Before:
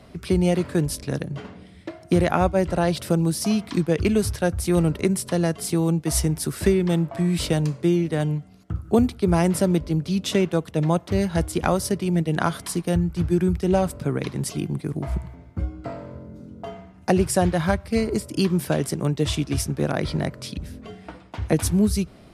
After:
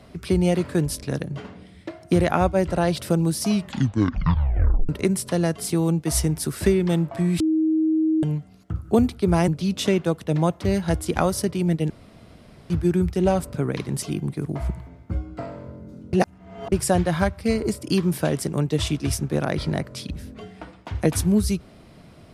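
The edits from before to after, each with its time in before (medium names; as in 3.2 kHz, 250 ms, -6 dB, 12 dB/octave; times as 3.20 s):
3.49 s: tape stop 1.40 s
7.40–8.23 s: bleep 316 Hz -17 dBFS
9.48–9.95 s: delete
12.37–13.17 s: room tone
16.60–17.19 s: reverse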